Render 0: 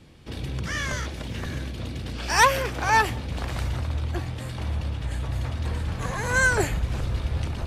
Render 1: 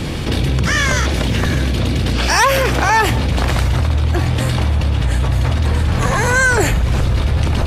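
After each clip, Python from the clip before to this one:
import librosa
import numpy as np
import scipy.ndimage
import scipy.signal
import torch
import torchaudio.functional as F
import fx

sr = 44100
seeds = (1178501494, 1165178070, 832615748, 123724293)

y = fx.env_flatten(x, sr, amount_pct=70)
y = y * 10.0 ** (3.0 / 20.0)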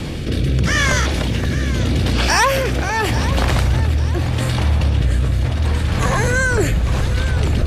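y = fx.rotary(x, sr, hz=0.8)
y = fx.echo_feedback(y, sr, ms=842, feedback_pct=38, wet_db=-13.5)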